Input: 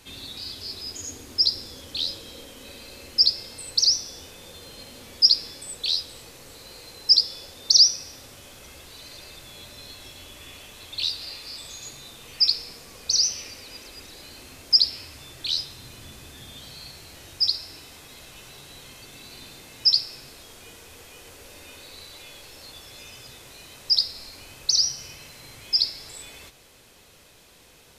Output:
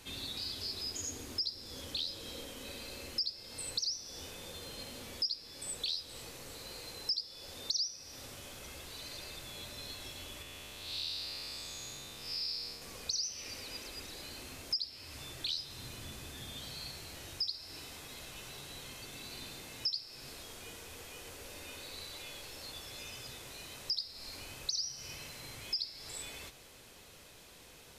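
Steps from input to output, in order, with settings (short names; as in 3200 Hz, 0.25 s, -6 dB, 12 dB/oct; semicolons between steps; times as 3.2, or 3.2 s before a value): 10.42–12.82 time blur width 0.224 s; compressor 4:1, threshold -33 dBFS, peak gain reduction 18.5 dB; gain -2.5 dB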